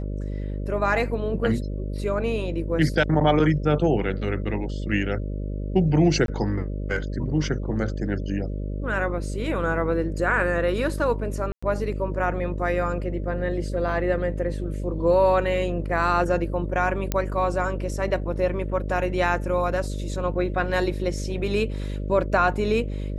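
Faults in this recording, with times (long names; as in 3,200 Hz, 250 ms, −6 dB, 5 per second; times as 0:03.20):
mains buzz 50 Hz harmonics 12 −29 dBFS
0:06.26–0:06.28: drop-out 22 ms
0:11.52–0:11.62: drop-out 105 ms
0:17.12: click −9 dBFS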